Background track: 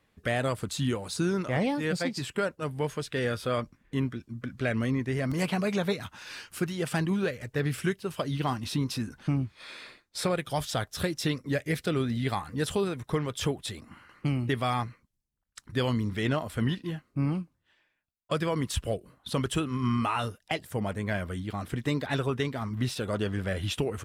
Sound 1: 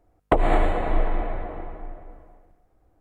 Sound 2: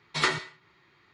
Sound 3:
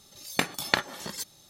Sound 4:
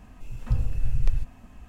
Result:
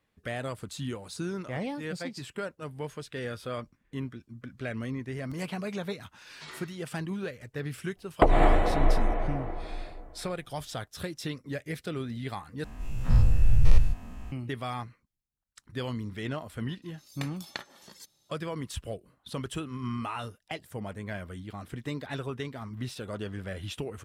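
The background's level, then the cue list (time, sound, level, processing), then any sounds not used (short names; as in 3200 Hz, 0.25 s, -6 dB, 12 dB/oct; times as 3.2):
background track -6.5 dB
6.26 add 2 -15.5 dB + limiter -18.5 dBFS
7.9 add 1 -1 dB, fades 0.10 s
12.64 replace with 4 -0.5 dB + spectral dilation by 0.12 s
16.82 add 3 -15 dB + bell 4600 Hz +2.5 dB 1.2 oct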